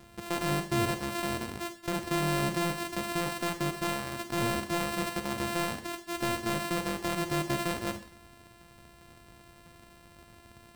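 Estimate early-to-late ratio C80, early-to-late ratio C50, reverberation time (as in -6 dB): 14.0 dB, 9.5 dB, 0.45 s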